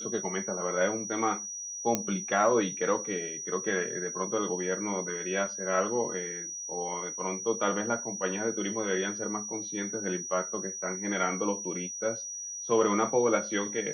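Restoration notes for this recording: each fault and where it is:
tone 5800 Hz -36 dBFS
1.95 pop -11 dBFS

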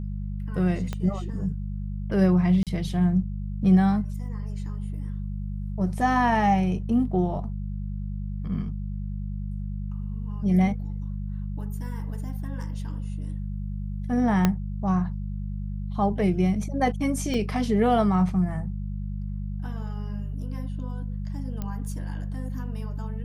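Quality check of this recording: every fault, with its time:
hum 50 Hz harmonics 4 -31 dBFS
0.93 pop -17 dBFS
2.63–2.67 gap 37 ms
14.45 pop -7 dBFS
17.34 gap 2.9 ms
21.62 pop -19 dBFS

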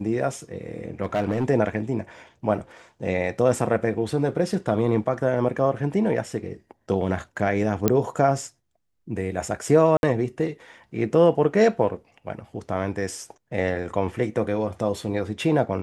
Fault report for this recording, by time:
1.03–1.45 clipped -18.5 dBFS
7.88 pop -5 dBFS
9.97–10.03 gap 61 ms

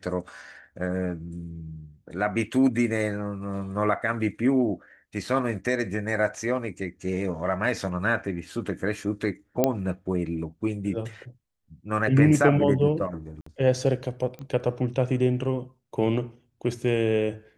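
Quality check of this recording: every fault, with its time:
9.64 pop -7 dBFS
13.41–13.46 gap 54 ms
14.39 pop -27 dBFS

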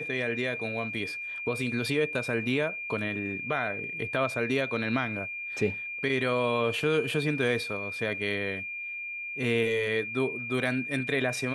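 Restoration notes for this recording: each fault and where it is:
tone 2400 Hz -34 dBFS

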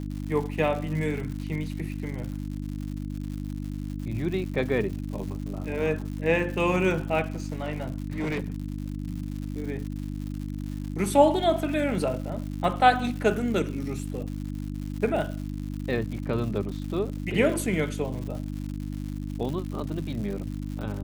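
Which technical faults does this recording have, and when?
crackle 170/s -35 dBFS
hum 50 Hz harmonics 6 -33 dBFS
7.26–8.62 clipped -25 dBFS

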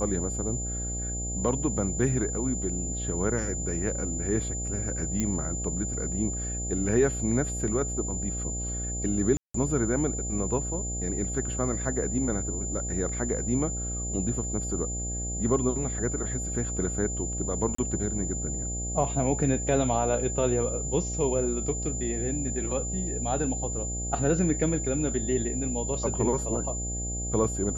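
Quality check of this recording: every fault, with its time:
buzz 60 Hz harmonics 13 -34 dBFS
tone 7100 Hz -33 dBFS
5.2 pop -14 dBFS
9.37–9.54 gap 0.174 s
17.75–17.78 gap 34 ms

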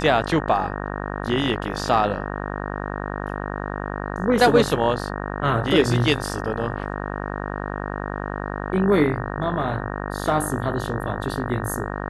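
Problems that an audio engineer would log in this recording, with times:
buzz 50 Hz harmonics 37 -29 dBFS

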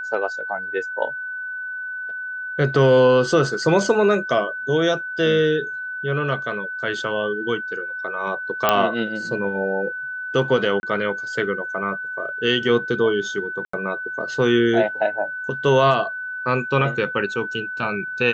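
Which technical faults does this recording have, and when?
tone 1500 Hz -27 dBFS
8.69 pop -2 dBFS
10.8–10.83 gap 31 ms
13.65–13.73 gap 84 ms

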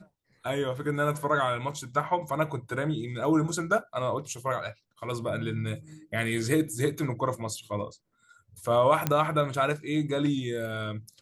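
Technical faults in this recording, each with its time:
9.07 pop -10 dBFS

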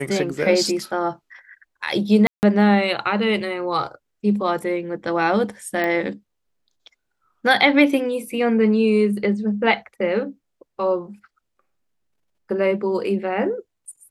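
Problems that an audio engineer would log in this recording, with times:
2.27–2.43 gap 0.159 s
5.84 pop -12 dBFS

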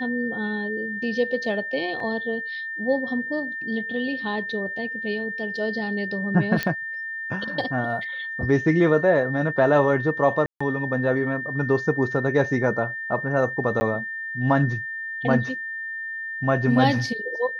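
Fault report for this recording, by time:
tone 1800 Hz -29 dBFS
2 gap 2.5 ms
6.63 pop -10 dBFS
10.46–10.61 gap 0.145 s
13.8–13.81 gap 10 ms

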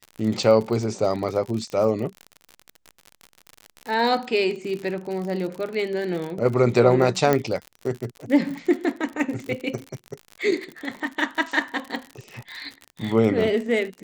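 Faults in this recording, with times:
crackle 55/s -29 dBFS
7.33 pop -7 dBFS

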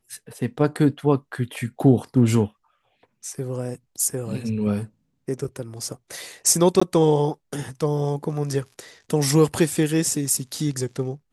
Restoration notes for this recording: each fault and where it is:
6.8–6.82 gap 15 ms

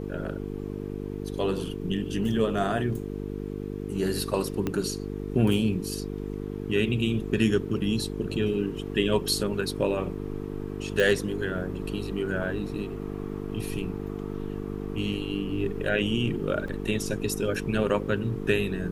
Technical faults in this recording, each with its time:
buzz 50 Hz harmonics 9 -34 dBFS
4.67 pop -15 dBFS
11 pop -12 dBFS
16.68 gap 3.2 ms

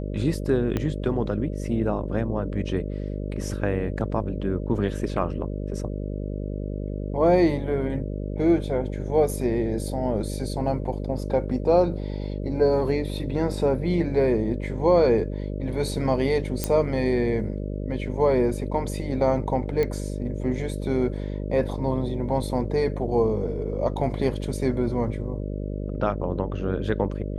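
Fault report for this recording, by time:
buzz 50 Hz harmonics 12 -30 dBFS
0.77 pop -13 dBFS
16.64 pop -8 dBFS
19.83 pop -14 dBFS

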